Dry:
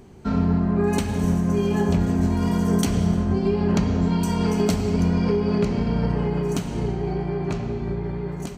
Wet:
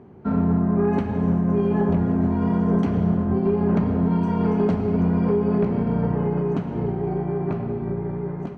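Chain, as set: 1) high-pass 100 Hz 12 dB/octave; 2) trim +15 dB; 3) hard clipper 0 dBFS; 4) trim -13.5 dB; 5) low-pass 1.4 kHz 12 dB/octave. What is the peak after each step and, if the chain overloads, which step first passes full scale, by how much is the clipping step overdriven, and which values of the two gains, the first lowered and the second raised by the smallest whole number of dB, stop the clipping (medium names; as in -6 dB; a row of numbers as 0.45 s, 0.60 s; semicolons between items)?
-8.5 dBFS, +6.5 dBFS, 0.0 dBFS, -13.5 dBFS, -13.0 dBFS; step 2, 6.5 dB; step 2 +8 dB, step 4 -6.5 dB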